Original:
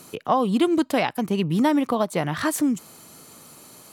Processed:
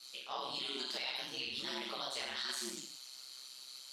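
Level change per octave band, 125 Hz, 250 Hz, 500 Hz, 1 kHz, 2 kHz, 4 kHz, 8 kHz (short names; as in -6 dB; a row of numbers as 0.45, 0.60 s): -32.5, -30.0, -23.0, -20.0, -12.0, -1.0, -10.5 dB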